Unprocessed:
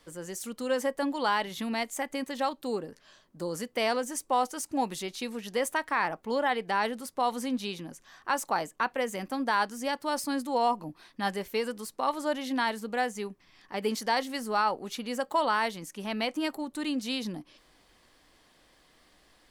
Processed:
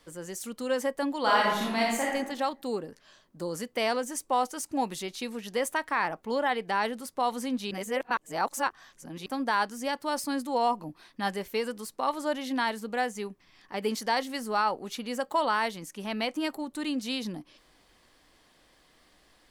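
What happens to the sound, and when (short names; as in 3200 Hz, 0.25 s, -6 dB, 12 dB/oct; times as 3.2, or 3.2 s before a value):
1.2–2.14 reverb throw, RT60 0.9 s, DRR -3.5 dB
7.71–9.26 reverse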